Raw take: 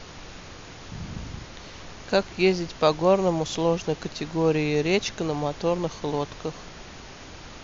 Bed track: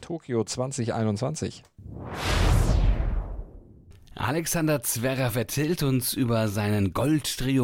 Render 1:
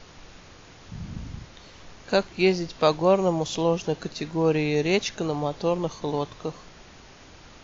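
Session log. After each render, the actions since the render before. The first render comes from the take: noise print and reduce 6 dB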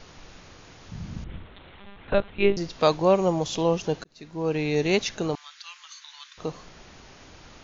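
1.24–2.57 s: monotone LPC vocoder at 8 kHz 200 Hz; 4.04–4.78 s: fade in; 5.35–6.38 s: steep high-pass 1.4 kHz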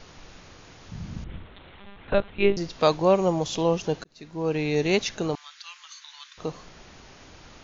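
no audible change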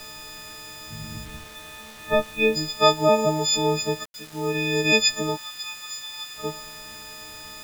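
partials quantised in pitch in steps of 6 st; bit crusher 7-bit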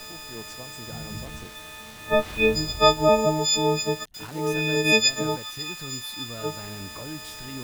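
add bed track -15 dB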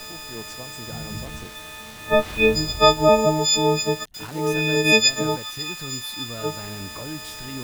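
trim +3 dB; peak limiter -2 dBFS, peak gain reduction 1 dB

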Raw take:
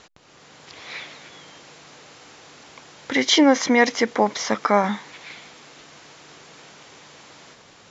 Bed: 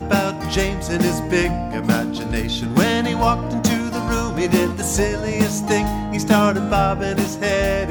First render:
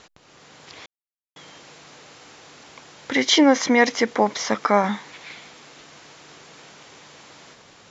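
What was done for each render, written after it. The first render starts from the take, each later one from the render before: 0.86–1.36 s: mute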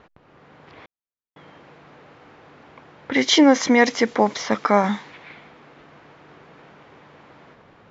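bass shelf 340 Hz +3.5 dB; level-controlled noise filter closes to 1.7 kHz, open at -13.5 dBFS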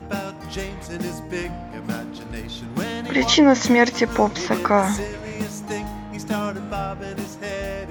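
add bed -10 dB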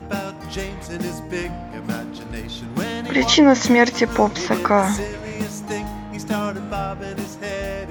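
trim +1.5 dB; peak limiter -2 dBFS, peak gain reduction 1 dB

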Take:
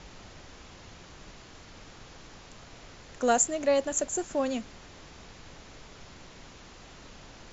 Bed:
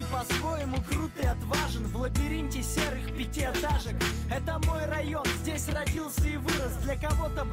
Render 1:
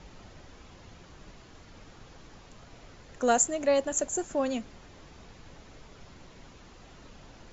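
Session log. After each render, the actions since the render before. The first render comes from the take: noise reduction 6 dB, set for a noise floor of -50 dBFS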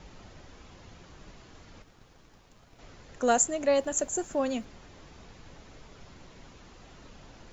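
1.82–2.79 s: companding laws mixed up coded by A; 3.70–4.65 s: word length cut 12-bit, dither none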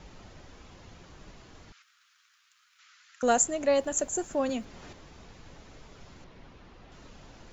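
1.72–3.23 s: elliptic high-pass 1.3 kHz, stop band 60 dB; 4.49–4.93 s: three bands compressed up and down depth 70%; 6.24–6.92 s: distance through air 150 m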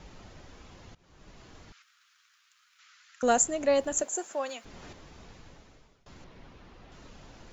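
0.95–1.45 s: fade in, from -20.5 dB; 4.02–4.64 s: high-pass 320 Hz -> 890 Hz; 5.33–6.06 s: fade out, to -24 dB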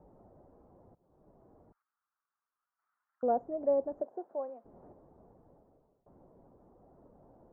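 inverse Chebyshev low-pass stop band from 3.2 kHz, stop band 70 dB; tilt EQ +3.5 dB/octave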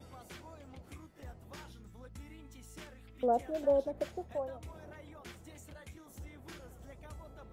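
add bed -21 dB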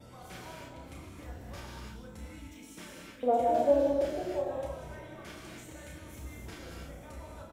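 doubling 33 ms -6 dB; gated-style reverb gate 340 ms flat, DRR -3 dB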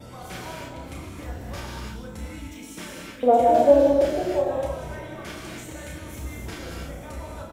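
trim +9.5 dB

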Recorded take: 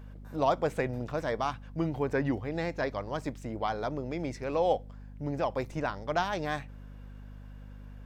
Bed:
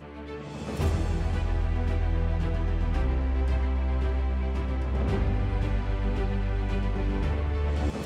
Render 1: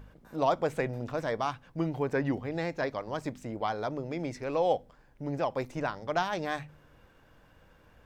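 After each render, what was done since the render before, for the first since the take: de-hum 50 Hz, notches 5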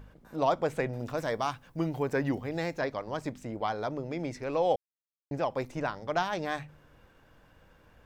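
0.99–2.79 s: treble shelf 7.7 kHz +12 dB; 4.76–5.31 s: mute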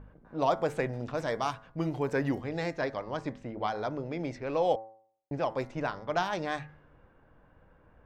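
de-hum 110.7 Hz, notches 19; level-controlled noise filter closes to 1.4 kHz, open at -25.5 dBFS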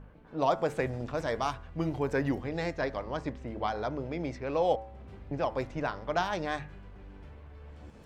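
add bed -21.5 dB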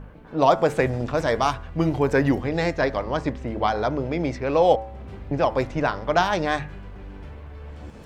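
trim +9.5 dB

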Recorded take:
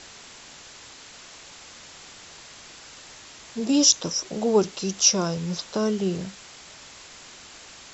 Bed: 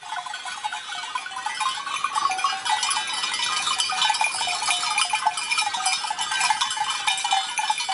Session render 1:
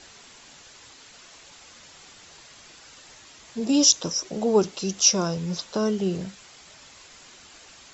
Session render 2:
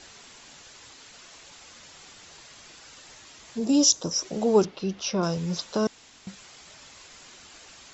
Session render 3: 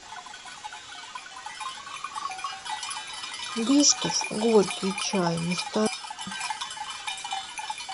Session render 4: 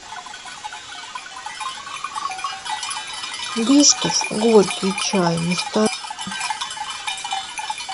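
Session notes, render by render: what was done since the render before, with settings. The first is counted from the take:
noise reduction 6 dB, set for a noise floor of -46 dBFS
3.57–4.11 s: peaking EQ 2.5 kHz -4 dB -> -11.5 dB 1.7 oct; 4.65–5.23 s: distance through air 260 m; 5.87–6.27 s: room tone
add bed -10.5 dB
trim +7 dB; peak limiter -2 dBFS, peak gain reduction 1 dB

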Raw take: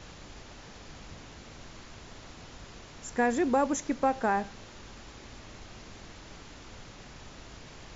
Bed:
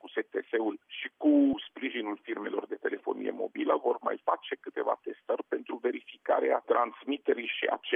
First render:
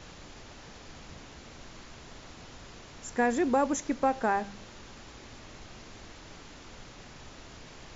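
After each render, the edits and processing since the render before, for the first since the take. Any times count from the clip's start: de-hum 50 Hz, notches 4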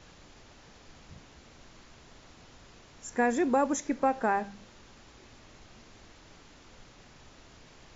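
noise print and reduce 6 dB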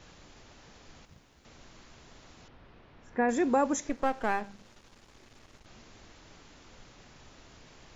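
1.05–1.45 s: companding laws mixed up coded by A; 2.48–3.29 s: distance through air 330 m; 3.89–5.66 s: partial rectifier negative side -12 dB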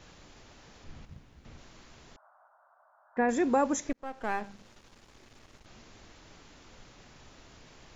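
0.84–1.58 s: tone controls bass +9 dB, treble -5 dB; 2.16–3.17 s: Chebyshev band-pass 610–1500 Hz, order 4; 3.93–4.45 s: fade in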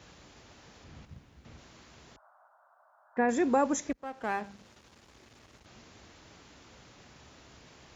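high-pass 47 Hz 24 dB/octave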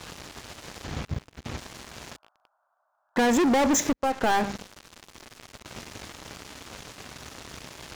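waveshaping leveller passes 5; compression, threshold -20 dBFS, peak gain reduction 3.5 dB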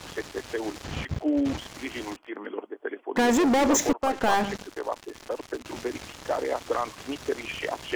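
add bed -1.5 dB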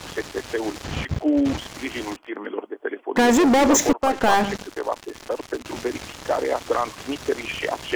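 trim +5 dB

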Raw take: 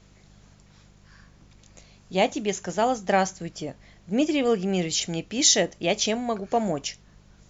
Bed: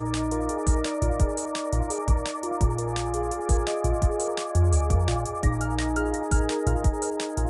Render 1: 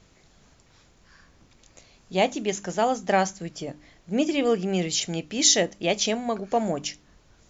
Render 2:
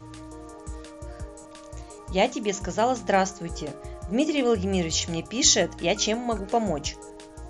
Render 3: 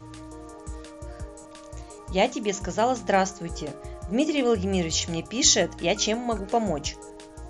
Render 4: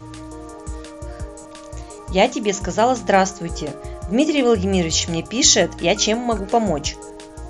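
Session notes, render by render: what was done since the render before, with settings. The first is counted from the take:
de-hum 50 Hz, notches 6
add bed -15 dB
no audible change
trim +6.5 dB; peak limiter -1 dBFS, peak gain reduction 2.5 dB

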